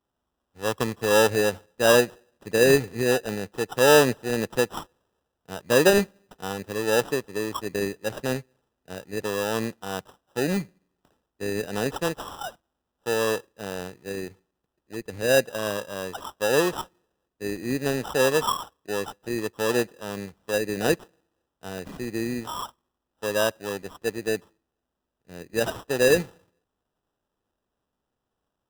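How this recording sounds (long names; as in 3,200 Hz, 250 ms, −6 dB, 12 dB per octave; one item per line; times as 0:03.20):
aliases and images of a low sample rate 2,200 Hz, jitter 0%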